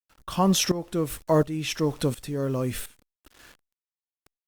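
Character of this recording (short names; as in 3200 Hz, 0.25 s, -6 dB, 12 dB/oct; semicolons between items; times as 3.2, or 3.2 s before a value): a quantiser's noise floor 8-bit, dither none; tremolo saw up 1.4 Hz, depth 85%; Opus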